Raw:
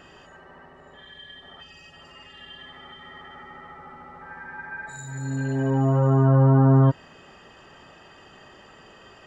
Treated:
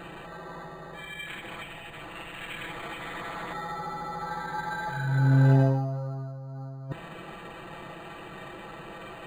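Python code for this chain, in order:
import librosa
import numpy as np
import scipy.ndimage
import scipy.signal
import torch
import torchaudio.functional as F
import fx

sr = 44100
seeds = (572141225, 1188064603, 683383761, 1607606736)

y = fx.cycle_switch(x, sr, every=3, mode='inverted', at=(1.25, 3.52), fade=0.02)
y = y + 0.68 * np.pad(y, (int(6.0 * sr / 1000.0), 0))[:len(y)]
y = fx.over_compress(y, sr, threshold_db=-24.0, ratio=-0.5)
y = np.interp(np.arange(len(y)), np.arange(len(y))[::8], y[::8])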